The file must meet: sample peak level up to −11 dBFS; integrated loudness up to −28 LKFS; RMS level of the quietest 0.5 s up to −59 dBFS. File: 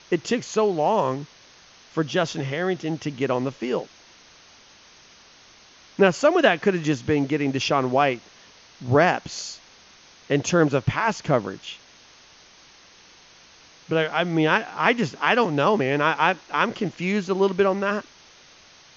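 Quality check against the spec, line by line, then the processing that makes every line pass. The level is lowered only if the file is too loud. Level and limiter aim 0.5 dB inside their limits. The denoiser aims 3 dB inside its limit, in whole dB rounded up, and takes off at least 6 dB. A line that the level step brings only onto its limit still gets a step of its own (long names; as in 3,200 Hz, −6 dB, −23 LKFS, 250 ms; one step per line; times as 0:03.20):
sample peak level −4.5 dBFS: out of spec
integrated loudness −22.5 LKFS: out of spec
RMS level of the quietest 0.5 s −51 dBFS: out of spec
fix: broadband denoise 6 dB, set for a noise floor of −51 dBFS
level −6 dB
brickwall limiter −11.5 dBFS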